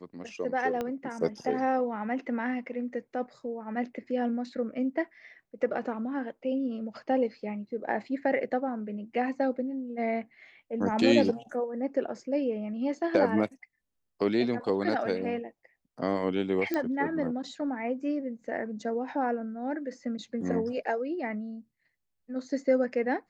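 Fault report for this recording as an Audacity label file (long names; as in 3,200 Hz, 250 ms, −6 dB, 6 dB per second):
0.810000	0.810000	click −19 dBFS
16.740000	16.740000	click −17 dBFS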